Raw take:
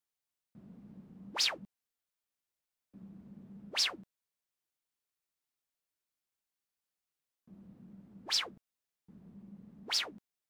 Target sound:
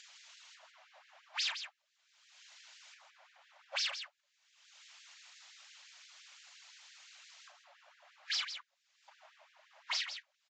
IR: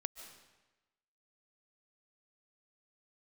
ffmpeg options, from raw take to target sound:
-filter_complex "[0:a]equalizer=f=2.9k:w=0.56:g=8,bandreject=f=60:t=h:w=6,bandreject=f=120:t=h:w=6,bandreject=f=180:t=h:w=6,bandreject=f=240:t=h:w=6,bandreject=f=300:t=h:w=6,bandreject=f=360:t=h:w=6,bandreject=f=420:t=h:w=6,bandreject=f=480:t=h:w=6,bandreject=f=540:t=h:w=6,acompressor=mode=upward:threshold=-35dB:ratio=2.5,afftfilt=real='hypot(re,im)*cos(2*PI*random(0))':imag='hypot(re,im)*sin(2*PI*random(1))':win_size=512:overlap=0.75,aresample=16000,asoftclip=type=tanh:threshold=-27.5dB,aresample=44100,acrossover=split=180[a][b];[b]acompressor=threshold=-46dB:ratio=2.5[c];[a][c]amix=inputs=2:normalize=0,asplit=2[d][e];[e]aecho=0:1:34.99|163.3:0.398|0.355[f];[d][f]amix=inputs=2:normalize=0,afftfilt=real='re*gte(b*sr/1024,520*pow(1600/520,0.5+0.5*sin(2*PI*5.8*pts/sr)))':imag='im*gte(b*sr/1024,520*pow(1600/520,0.5+0.5*sin(2*PI*5.8*pts/sr)))':win_size=1024:overlap=0.75,volume=8dB"

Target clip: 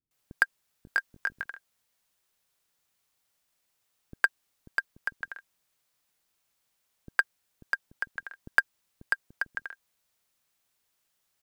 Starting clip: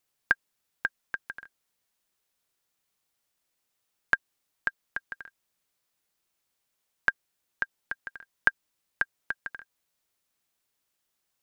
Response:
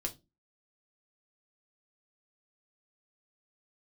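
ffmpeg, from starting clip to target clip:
-filter_complex "[0:a]asplit=2[a][b];[b]aeval=exprs='0.0708*(abs(mod(val(0)/0.0708+3,4)-2)-1)':c=same,volume=-8dB[c];[a][c]amix=inputs=2:normalize=0,acrossover=split=320[d][e];[e]adelay=110[f];[d][f]amix=inputs=2:normalize=0,acrusher=bits=9:mode=log:mix=0:aa=0.000001,asplit=3[g][h][i];[g]afade=t=out:st=0.86:d=0.02[j];[h]asplit=2[k][l];[l]adelay=20,volume=-3dB[m];[k][m]amix=inputs=2:normalize=0,afade=t=in:st=0.86:d=0.02,afade=t=out:st=1.42:d=0.02[n];[i]afade=t=in:st=1.42:d=0.02[o];[j][n][o]amix=inputs=3:normalize=0"

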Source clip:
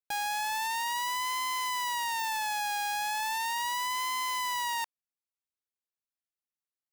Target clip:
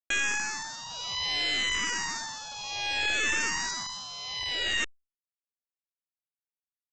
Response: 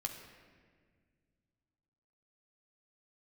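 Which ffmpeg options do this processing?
-filter_complex "[0:a]asubboost=boost=4:cutoff=78,aeval=exprs='0.0891*(cos(1*acos(clip(val(0)/0.0891,-1,1)))-cos(1*PI/2))+0.00282*(cos(3*acos(clip(val(0)/0.0891,-1,1)))-cos(3*PI/2))+0.00251*(cos(8*acos(clip(val(0)/0.0891,-1,1)))-cos(8*PI/2))':c=same,aresample=16000,acrusher=bits=4:mix=0:aa=0.000001,aresample=44100,tremolo=f=0.61:d=0.8,asplit=2[a][b];[b]afreqshift=-0.64[c];[a][c]amix=inputs=2:normalize=1,volume=7.5dB"

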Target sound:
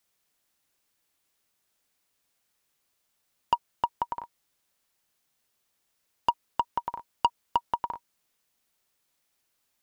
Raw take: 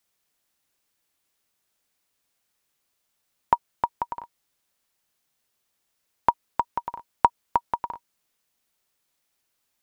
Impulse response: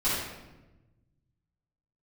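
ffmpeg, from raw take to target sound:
-af "asoftclip=type=tanh:threshold=-13.5dB"

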